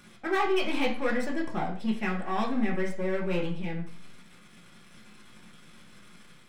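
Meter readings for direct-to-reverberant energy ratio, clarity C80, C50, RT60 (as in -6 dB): -3.0 dB, 12.0 dB, 8.0 dB, 0.50 s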